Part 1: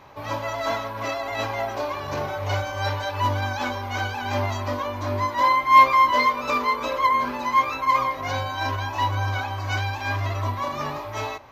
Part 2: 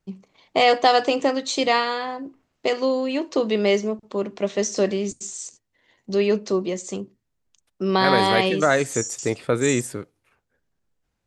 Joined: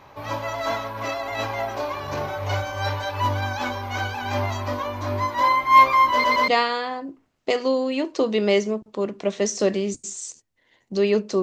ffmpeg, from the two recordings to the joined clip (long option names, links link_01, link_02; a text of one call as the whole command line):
ffmpeg -i cue0.wav -i cue1.wav -filter_complex "[0:a]apad=whole_dur=11.42,atrim=end=11.42,asplit=3[link_01][link_02][link_03];[link_01]atrim=end=6.242[link_04];[link_02]atrim=start=6.118:end=6.242[link_05];[link_03]atrim=start=6.118:end=6.242[link_06];[1:a]atrim=start=1.648:end=6.59[link_07];[link_04][link_05]acrossfade=duration=0.004:curve1=hsin:curve2=hsin[link_08];[link_08][link_06]acrossfade=duration=0.004:curve1=hsin:curve2=hsin[link_09];[link_09][link_07]acrossfade=duration=0.004:curve1=hsin:curve2=hsin" out.wav